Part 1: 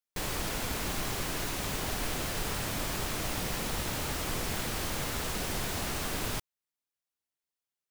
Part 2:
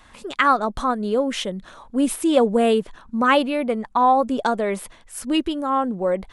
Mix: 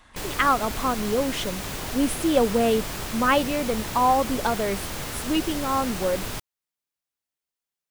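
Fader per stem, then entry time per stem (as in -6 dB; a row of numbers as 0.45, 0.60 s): +1.5, -3.5 dB; 0.00, 0.00 s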